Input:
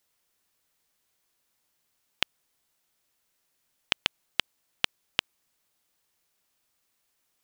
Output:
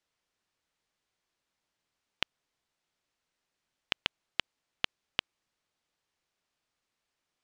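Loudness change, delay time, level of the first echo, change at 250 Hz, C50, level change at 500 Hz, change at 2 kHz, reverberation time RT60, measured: −5.0 dB, no echo audible, no echo audible, −3.5 dB, no reverb audible, −3.5 dB, −4.5 dB, no reverb audible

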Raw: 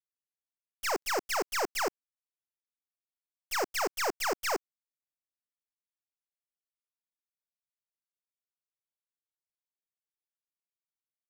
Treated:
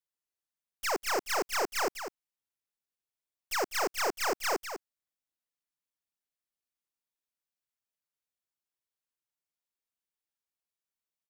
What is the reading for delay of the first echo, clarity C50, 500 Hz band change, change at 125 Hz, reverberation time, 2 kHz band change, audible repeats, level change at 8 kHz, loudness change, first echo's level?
200 ms, no reverb audible, +0.5 dB, +1.0 dB, no reverb audible, +0.5 dB, 1, +0.5 dB, +0.5 dB, −9.0 dB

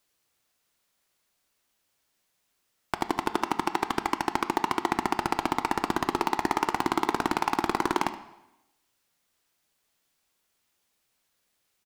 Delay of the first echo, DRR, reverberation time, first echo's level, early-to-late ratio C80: 73 ms, 9.5 dB, 0.90 s, −15.5 dB, 15.0 dB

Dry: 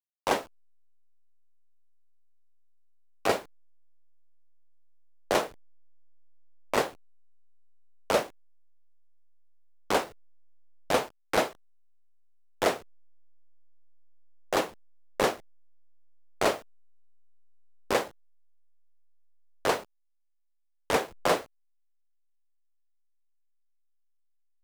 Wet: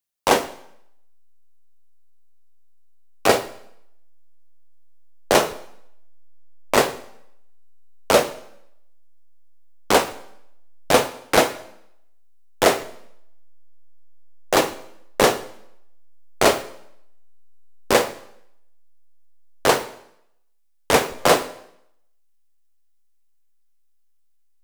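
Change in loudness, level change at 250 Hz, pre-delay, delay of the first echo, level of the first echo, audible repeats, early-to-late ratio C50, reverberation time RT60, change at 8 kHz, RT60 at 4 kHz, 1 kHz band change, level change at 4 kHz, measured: +9.5 dB, +9.5 dB, 4 ms, no echo audible, no echo audible, no echo audible, 15.0 dB, 0.75 s, +12.5 dB, 0.70 s, +9.0 dB, +11.0 dB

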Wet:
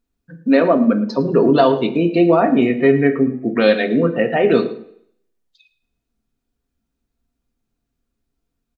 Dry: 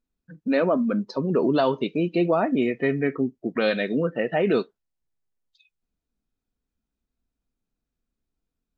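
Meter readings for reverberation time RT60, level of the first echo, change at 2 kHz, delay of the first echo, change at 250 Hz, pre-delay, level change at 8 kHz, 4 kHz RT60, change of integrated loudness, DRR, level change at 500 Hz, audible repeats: 0.65 s, −17.5 dB, +7.0 dB, 110 ms, +8.5 dB, 3 ms, can't be measured, 0.65 s, +8.0 dB, 6.0 dB, +8.0 dB, 1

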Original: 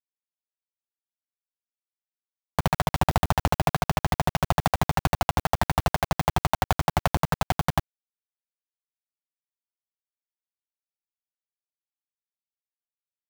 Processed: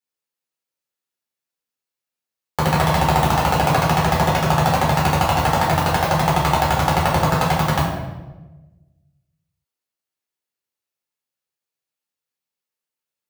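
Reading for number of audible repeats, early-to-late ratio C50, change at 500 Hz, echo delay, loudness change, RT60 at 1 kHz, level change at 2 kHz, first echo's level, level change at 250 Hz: no echo audible, 2.5 dB, +9.0 dB, no echo audible, +8.5 dB, 1.0 s, +8.5 dB, no echo audible, +8.5 dB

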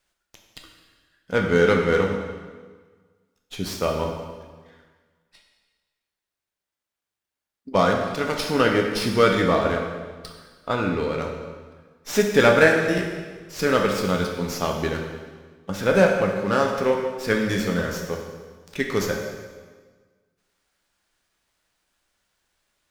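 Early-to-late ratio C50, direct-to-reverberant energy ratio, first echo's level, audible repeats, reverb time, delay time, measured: 4.0 dB, 1.0 dB, no echo audible, no echo audible, 1.5 s, no echo audible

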